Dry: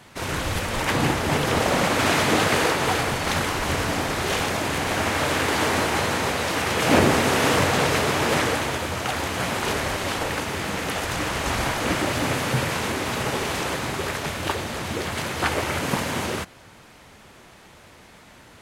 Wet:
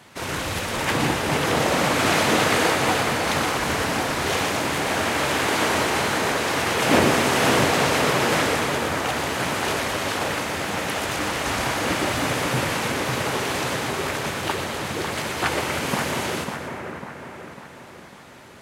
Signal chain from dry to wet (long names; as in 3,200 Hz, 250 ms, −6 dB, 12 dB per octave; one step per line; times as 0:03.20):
high-pass filter 110 Hz 6 dB per octave
on a send: echo with a time of its own for lows and highs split 2,200 Hz, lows 548 ms, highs 120 ms, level −6 dB